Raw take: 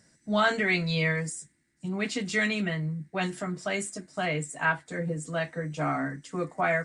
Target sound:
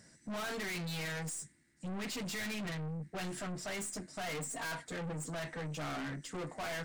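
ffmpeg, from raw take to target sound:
ffmpeg -i in.wav -filter_complex "[0:a]asettb=1/sr,asplit=3[link_01][link_02][link_03];[link_01]atrim=end=4.214[link_04];[link_02]atrim=start=4.21:end=4.85,asetpts=PTS-STARTPTS,afade=type=in:duration=0.004:curve=qsin,afade=type=out:start_time=0.636:duration=0.004:curve=qsin,aecho=1:1:4.3:0.86,atrim=end_sample=28224[link_05];[link_03]atrim=start=4.846[link_06];[link_04][link_05]acrossfade=duration=0.004:curve1=hsin:curve2=qsin[link_07];[link_07][link_06]acrossfade=duration=0.004:curve1=qsin:curve2=hsin,aeval=exprs='(tanh(100*val(0)+0.2)-tanh(0.2))/100':channel_layout=same,volume=2dB" out.wav

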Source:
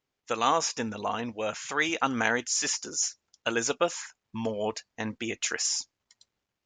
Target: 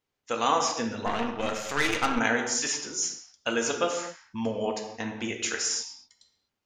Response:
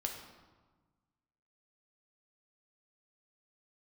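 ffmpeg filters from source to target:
-filter_complex "[1:a]atrim=start_sample=2205,afade=type=out:start_time=0.32:duration=0.01,atrim=end_sample=14553[link_01];[0:a][link_01]afir=irnorm=-1:irlink=0,asplit=3[link_02][link_03][link_04];[link_02]afade=type=out:start_time=1.05:duration=0.02[link_05];[link_03]aeval=exprs='0.266*(cos(1*acos(clip(val(0)/0.266,-1,1)))-cos(1*PI/2))+0.0335*(cos(8*acos(clip(val(0)/0.266,-1,1)))-cos(8*PI/2))':channel_layout=same,afade=type=in:start_time=1.05:duration=0.02,afade=type=out:start_time=2.18:duration=0.02[link_06];[link_04]afade=type=in:start_time=2.18:duration=0.02[link_07];[link_05][link_06][link_07]amix=inputs=3:normalize=0"

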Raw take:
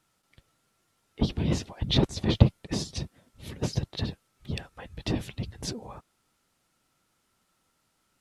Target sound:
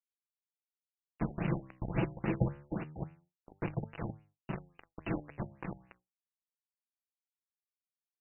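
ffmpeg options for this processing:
ffmpeg -i in.wav -filter_complex "[0:a]aresample=11025,acrusher=bits=3:mode=log:mix=0:aa=0.000001,aresample=44100,acompressor=threshold=-34dB:ratio=1.5,aemphasis=mode=production:type=50kf,bandreject=frequency=1900:width=21,aecho=1:1:6:0.8,asplit=2[link_01][link_02];[link_02]aecho=0:1:70|140|210|280:0.0891|0.0499|0.0279|0.0157[link_03];[link_01][link_03]amix=inputs=2:normalize=0,acrusher=bits=4:mix=0:aa=0.000001,flanger=delay=8.5:depth=8:regen=85:speed=0.25:shape=triangular,bandreject=frequency=50:width_type=h:width=6,bandreject=frequency=100:width_type=h:width=6,bandreject=frequency=150:width_type=h:width=6,agate=range=-33dB:threshold=-57dB:ratio=3:detection=peak,afftfilt=real='re*lt(b*sr/1024,830*pow(3000/830,0.5+0.5*sin(2*PI*3.6*pts/sr)))':imag='im*lt(b*sr/1024,830*pow(3000/830,0.5+0.5*sin(2*PI*3.6*pts/sr)))':win_size=1024:overlap=0.75" out.wav

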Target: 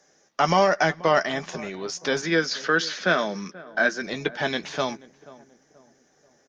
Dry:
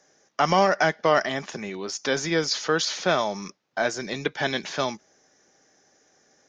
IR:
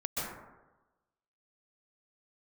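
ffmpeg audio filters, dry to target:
-filter_complex "[0:a]asplit=3[link_01][link_02][link_03];[link_01]afade=type=out:start_time=2.21:duration=0.02[link_04];[link_02]highpass=frequency=170:width=0.5412,highpass=frequency=170:width=1.3066,equalizer=frequency=210:width_type=q:width=4:gain=7,equalizer=frequency=860:width_type=q:width=4:gain=-8,equalizer=frequency=1600:width_type=q:width=4:gain=9,lowpass=frequency=6400:width=0.5412,lowpass=frequency=6400:width=1.3066,afade=type=in:start_time=2.21:duration=0.02,afade=type=out:start_time=4.02:duration=0.02[link_05];[link_03]afade=type=in:start_time=4.02:duration=0.02[link_06];[link_04][link_05][link_06]amix=inputs=3:normalize=0,asplit=2[link_07][link_08];[link_08]adelay=12,volume=-10.5dB[link_09];[link_07][link_09]amix=inputs=2:normalize=0,asplit=2[link_10][link_11];[link_11]adelay=483,lowpass=frequency=1100:poles=1,volume=-18.5dB,asplit=2[link_12][link_13];[link_13]adelay=483,lowpass=frequency=1100:poles=1,volume=0.44,asplit=2[link_14][link_15];[link_15]adelay=483,lowpass=frequency=1100:poles=1,volume=0.44,asplit=2[link_16][link_17];[link_17]adelay=483,lowpass=frequency=1100:poles=1,volume=0.44[link_18];[link_10][link_12][link_14][link_16][link_18]amix=inputs=5:normalize=0" -ar 48000 -c:a libopus -b:a 48k

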